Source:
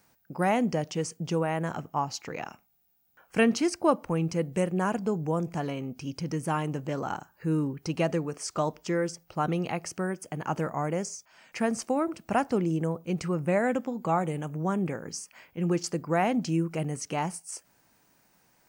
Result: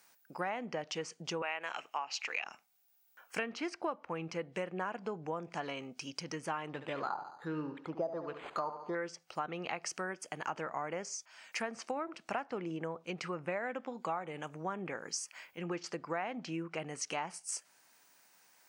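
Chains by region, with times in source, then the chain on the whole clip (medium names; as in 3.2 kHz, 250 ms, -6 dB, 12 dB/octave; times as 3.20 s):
1.42–2.44 s: Bessel high-pass 550 Hz + peaking EQ 2.6 kHz +13.5 dB 0.57 oct
6.69–8.95 s: LFO low-pass sine 1.3 Hz 640–3600 Hz + feedback delay 71 ms, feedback 46%, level -11 dB + decimation joined by straight lines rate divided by 8×
whole clip: low-pass that closes with the level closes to 2.7 kHz, closed at -25 dBFS; high-pass 1.3 kHz 6 dB/octave; compression 6:1, threshold -36 dBFS; trim +3 dB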